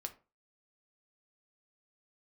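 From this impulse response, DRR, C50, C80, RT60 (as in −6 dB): 5.5 dB, 15.0 dB, 21.5 dB, 0.35 s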